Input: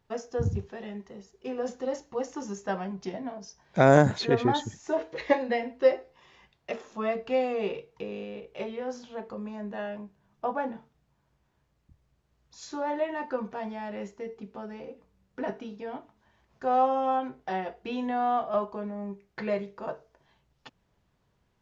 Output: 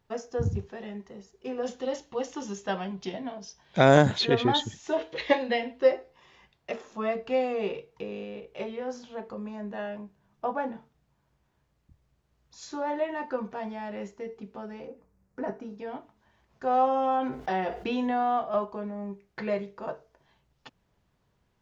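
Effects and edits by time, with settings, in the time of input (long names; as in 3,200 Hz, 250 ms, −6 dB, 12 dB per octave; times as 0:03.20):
0:01.63–0:05.80: parametric band 3,300 Hz +10.5 dB 0.75 octaves
0:14.87–0:15.78: parametric band 3,300 Hz −13 dB 1 octave
0:16.87–0:18.23: envelope flattener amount 50%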